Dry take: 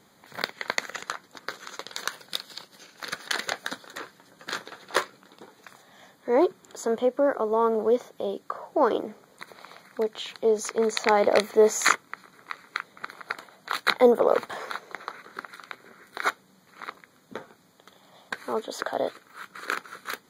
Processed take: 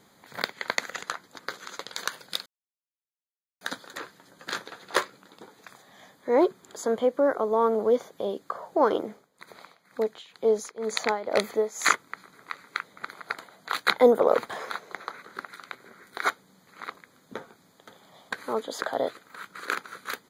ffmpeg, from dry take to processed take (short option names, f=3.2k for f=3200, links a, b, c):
-filter_complex "[0:a]asettb=1/sr,asplit=3[a][b][c];[a]atrim=end=9.084[d];[b]atrim=start=9.08:end=12,asetpts=PTS-STARTPTS,afade=t=in:d=0.004:c=qsin,afade=t=out:st=2.916:d=0.004:c=qsin,tremolo=f=2.1:d=0.83[e];[c]atrim=start=11.996[f];[d][e]acrossfade=d=0.004:c1=hsin:c2=qsin[g];[g][f]acrossfade=d=0.004:c1=qsin:c2=hsin,asplit=2[h][i];[i]afade=t=in:st=17.36:d=0.01,afade=t=out:st=18.35:d=0.01,aecho=0:1:510|1020|1530|2040|2550|3060|3570:0.281838|0.169103|0.101462|0.0608771|0.0365262|0.0219157|0.0131494[j];[h][j]amix=inputs=2:normalize=0,asplit=3[k][l][m];[k]atrim=end=2.46,asetpts=PTS-STARTPTS,afade=t=out:st=2.456:d=0.004:c=hsin[n];[l]atrim=start=2.46:end=3.61,asetpts=PTS-STARTPTS,volume=0[o];[m]atrim=start=3.61,asetpts=PTS-STARTPTS,afade=t=in:d=0.004:c=hsin[p];[n][o][p]concat=n=3:v=0:a=1"